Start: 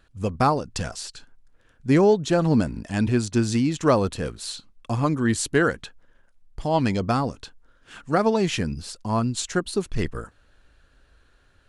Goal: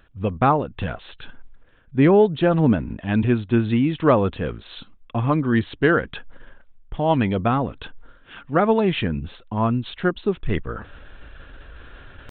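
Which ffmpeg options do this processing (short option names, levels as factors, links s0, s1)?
-af "areverse,acompressor=mode=upward:threshold=0.0355:ratio=2.5,areverse,atempo=0.95,aresample=8000,aresample=44100,volume=1.33"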